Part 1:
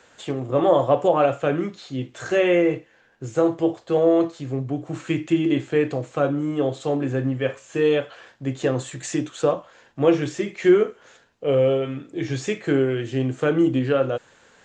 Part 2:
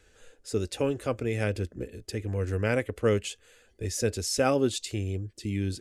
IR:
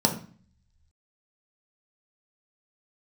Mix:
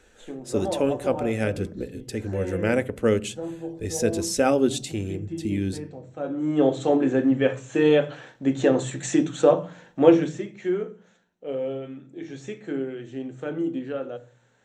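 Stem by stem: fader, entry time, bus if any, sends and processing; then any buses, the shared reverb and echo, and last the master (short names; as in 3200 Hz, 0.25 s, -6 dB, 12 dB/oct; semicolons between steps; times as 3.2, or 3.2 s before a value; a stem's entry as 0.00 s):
6.14 s -12.5 dB -> 6.62 s -0.5 dB -> 10.04 s -0.5 dB -> 10.55 s -13.5 dB, 0.00 s, send -20 dB, auto duck -15 dB, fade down 1.90 s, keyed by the second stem
+1.5 dB, 0.00 s, send -23.5 dB, dry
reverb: on, RT60 0.45 s, pre-delay 3 ms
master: dry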